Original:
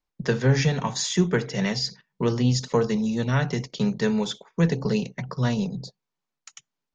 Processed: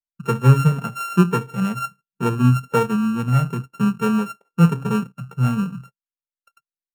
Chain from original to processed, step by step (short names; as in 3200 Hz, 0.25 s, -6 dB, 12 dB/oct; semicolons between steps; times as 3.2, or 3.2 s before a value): sample sorter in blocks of 32 samples; bell 4400 Hz -8 dB 0.42 oct; spectral expander 1.5:1; gain +6 dB